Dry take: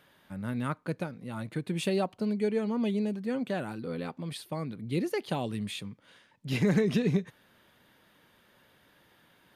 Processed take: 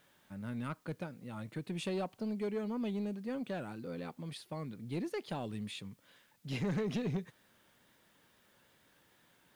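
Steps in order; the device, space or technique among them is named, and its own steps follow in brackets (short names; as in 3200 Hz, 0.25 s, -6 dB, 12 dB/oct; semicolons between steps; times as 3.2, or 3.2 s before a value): compact cassette (soft clip -23 dBFS, distortion -15 dB; LPF 9600 Hz; wow and flutter; white noise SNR 34 dB); gain -6 dB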